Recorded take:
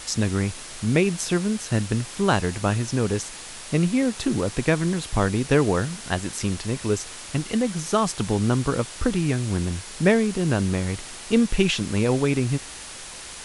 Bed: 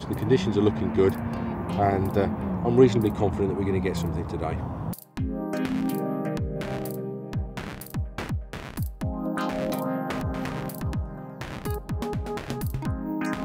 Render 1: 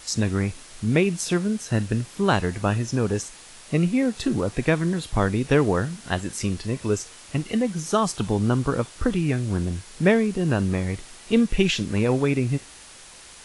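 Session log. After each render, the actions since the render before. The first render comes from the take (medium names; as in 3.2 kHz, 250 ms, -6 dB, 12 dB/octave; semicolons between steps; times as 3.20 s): noise print and reduce 7 dB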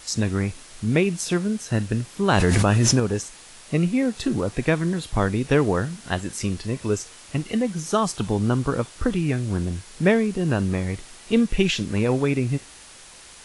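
2.29–3.00 s: level flattener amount 100%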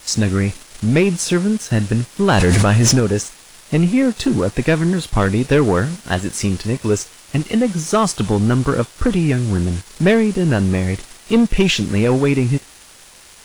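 waveshaping leveller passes 2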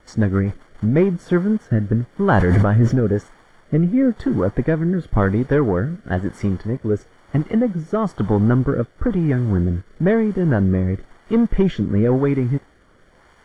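rotary cabinet horn 7.5 Hz, later 1 Hz, at 0.48 s; Savitzky-Golay filter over 41 samples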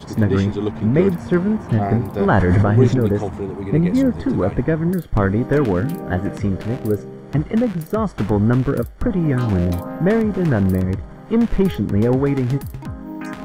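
add bed -1 dB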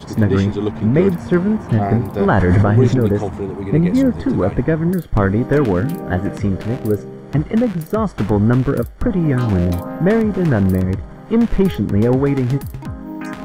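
trim +2 dB; peak limiter -3 dBFS, peak gain reduction 3 dB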